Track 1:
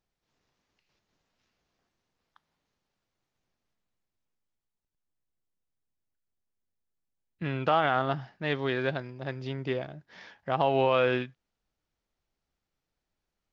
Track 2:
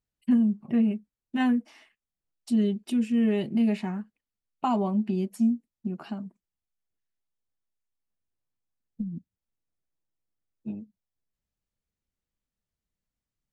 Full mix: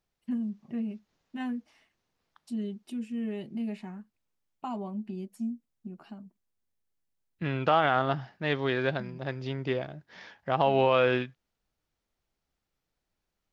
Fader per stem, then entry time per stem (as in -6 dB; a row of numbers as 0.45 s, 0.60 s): +1.0 dB, -10.0 dB; 0.00 s, 0.00 s